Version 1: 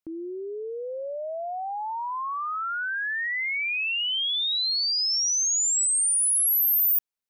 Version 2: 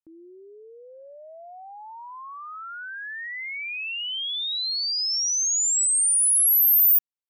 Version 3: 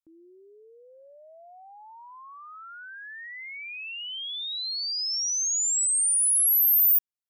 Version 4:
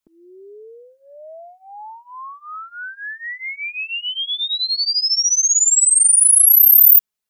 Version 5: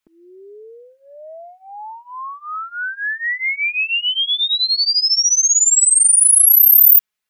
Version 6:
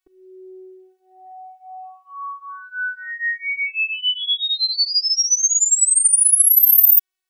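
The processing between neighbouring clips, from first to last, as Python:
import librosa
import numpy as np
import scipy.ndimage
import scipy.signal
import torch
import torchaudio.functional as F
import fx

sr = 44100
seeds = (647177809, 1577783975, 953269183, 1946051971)

y1 = fx.upward_expand(x, sr, threshold_db=-33.0, expansion=2.5)
y1 = y1 * 10.0 ** (5.0 / 20.0)
y2 = fx.bass_treble(y1, sr, bass_db=1, treble_db=4)
y2 = y2 * 10.0 ** (-6.5 / 20.0)
y3 = y2 + 0.9 * np.pad(y2, (int(4.7 * sr / 1000.0), 0))[:len(y2)]
y3 = y3 * 10.0 ** (8.0 / 20.0)
y4 = fx.peak_eq(y3, sr, hz=2000.0, db=8.0, octaves=1.9)
y5 = fx.robotise(y4, sr, hz=373.0)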